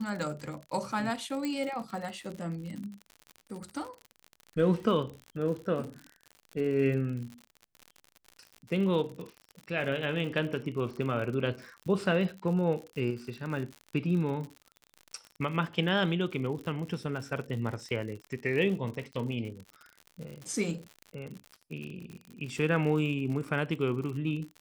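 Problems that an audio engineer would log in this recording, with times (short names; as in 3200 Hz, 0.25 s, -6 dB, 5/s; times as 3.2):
crackle 69/s -37 dBFS
1.45 pop -21 dBFS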